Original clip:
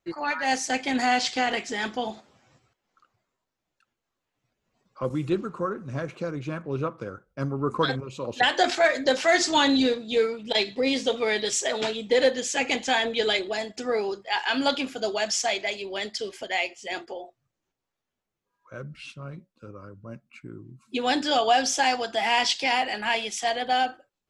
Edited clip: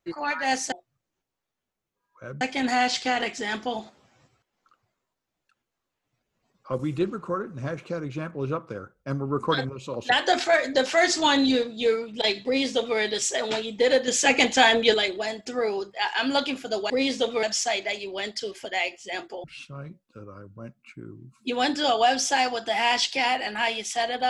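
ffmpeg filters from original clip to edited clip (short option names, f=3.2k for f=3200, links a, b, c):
-filter_complex "[0:a]asplit=8[a][b][c][d][e][f][g][h];[a]atrim=end=0.722[i];[b]atrim=start=17.218:end=18.912[j];[c]atrim=start=0.718:end=12.392[k];[d]atrim=start=12.388:end=13.252,asetpts=PTS-STARTPTS,volume=6dB[l];[e]atrim=start=13.248:end=15.212[m];[f]atrim=start=10.758:end=11.292[n];[g]atrim=start=15.208:end=17.222[o];[h]atrim=start=18.908[p];[i][j]acrossfade=d=0.004:c1=hsin:c2=hsin[q];[q][k]acrossfade=d=0.004:c1=hsin:c2=hsin[r];[r][l]acrossfade=d=0.004:c1=hsin:c2=hsin[s];[s][m]acrossfade=d=0.004:c1=hsin:c2=hsin[t];[t][n]acrossfade=d=0.004:c1=hsin:c2=hsin[u];[u][o]acrossfade=d=0.004:c1=hsin:c2=hsin[v];[v][p]acrossfade=d=0.004:c1=hsin:c2=hsin"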